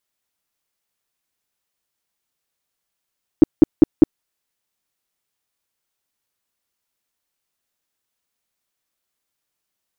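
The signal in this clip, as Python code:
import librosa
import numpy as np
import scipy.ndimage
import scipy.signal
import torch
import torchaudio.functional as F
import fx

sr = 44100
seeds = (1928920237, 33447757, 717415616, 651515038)

y = fx.tone_burst(sr, hz=314.0, cycles=5, every_s=0.2, bursts=4, level_db=-2.5)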